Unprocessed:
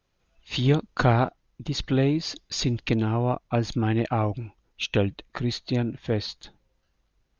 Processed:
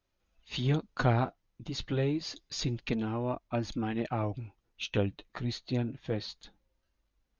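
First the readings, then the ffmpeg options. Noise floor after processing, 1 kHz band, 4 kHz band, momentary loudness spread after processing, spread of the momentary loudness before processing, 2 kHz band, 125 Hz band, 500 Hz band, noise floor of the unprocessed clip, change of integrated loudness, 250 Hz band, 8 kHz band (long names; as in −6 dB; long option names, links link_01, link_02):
−79 dBFS, −7.5 dB, −7.5 dB, 11 LU, 10 LU, −7.0 dB, −7.5 dB, −7.0 dB, −73 dBFS, −7.0 dB, −7.0 dB, can't be measured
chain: -af "flanger=delay=3.2:depth=6.8:regen=-38:speed=0.29:shape=sinusoidal,volume=-3.5dB"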